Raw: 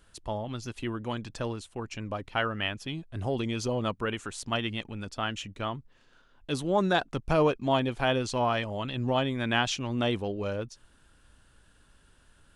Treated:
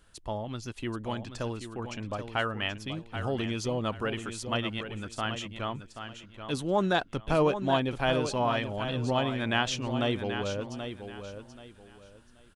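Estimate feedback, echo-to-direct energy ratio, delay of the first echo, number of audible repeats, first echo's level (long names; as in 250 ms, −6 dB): 26%, −8.5 dB, 781 ms, 3, −9.0 dB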